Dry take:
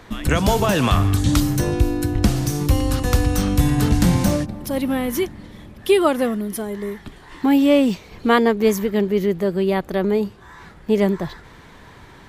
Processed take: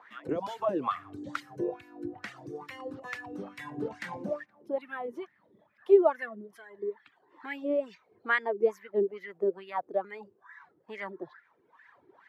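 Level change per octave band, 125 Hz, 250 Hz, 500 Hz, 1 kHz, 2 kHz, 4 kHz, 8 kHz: -31.5 dB, -19.0 dB, -9.0 dB, -11.0 dB, -8.0 dB, under -20 dB, under -30 dB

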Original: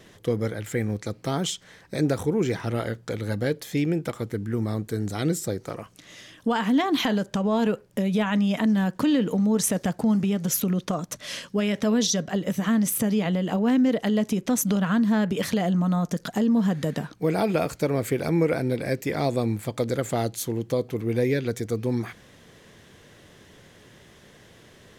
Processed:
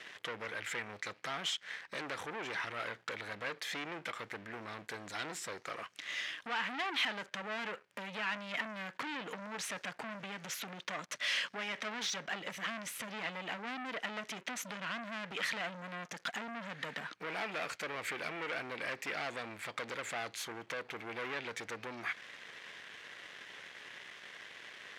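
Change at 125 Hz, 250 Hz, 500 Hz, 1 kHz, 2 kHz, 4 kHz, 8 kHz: -27.0 dB, -26.0 dB, -18.0 dB, -9.0 dB, -2.0 dB, -5.0 dB, -14.0 dB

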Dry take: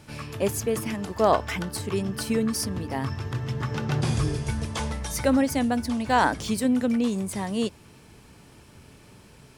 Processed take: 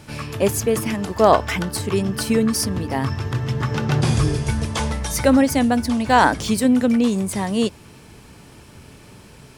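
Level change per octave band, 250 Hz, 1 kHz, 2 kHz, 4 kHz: +6.5 dB, +6.5 dB, +6.5 dB, +6.5 dB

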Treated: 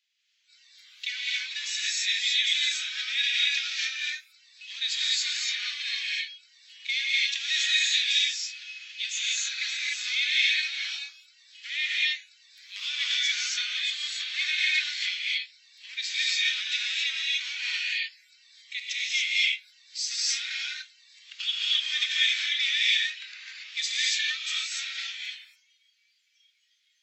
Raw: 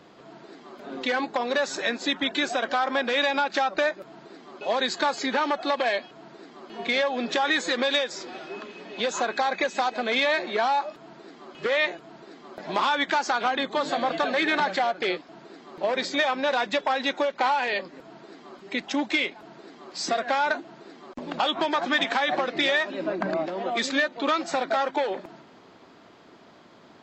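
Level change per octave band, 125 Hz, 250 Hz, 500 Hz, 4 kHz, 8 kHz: under -40 dB, under -40 dB, under -40 dB, +6.0 dB, +8.0 dB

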